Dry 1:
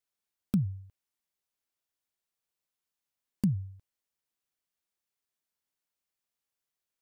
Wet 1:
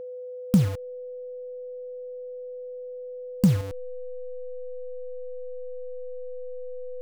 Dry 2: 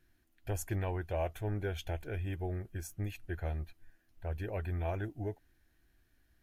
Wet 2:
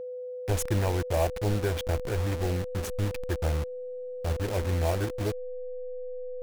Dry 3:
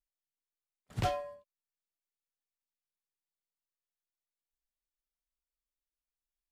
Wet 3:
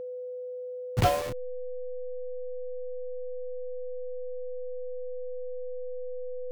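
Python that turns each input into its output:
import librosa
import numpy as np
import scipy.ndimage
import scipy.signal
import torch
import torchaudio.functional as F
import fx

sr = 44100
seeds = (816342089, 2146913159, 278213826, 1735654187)

y = fx.delta_hold(x, sr, step_db=-38.0)
y = fx.wow_flutter(y, sr, seeds[0], rate_hz=2.1, depth_cents=23.0)
y = y + 10.0 ** (-43.0 / 20.0) * np.sin(2.0 * np.pi * 500.0 * np.arange(len(y)) / sr)
y = y * librosa.db_to_amplitude(8.5)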